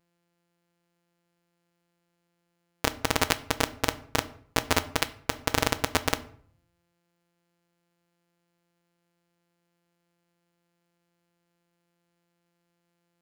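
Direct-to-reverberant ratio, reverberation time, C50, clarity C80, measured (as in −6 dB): 11.0 dB, 0.55 s, 18.0 dB, 21.0 dB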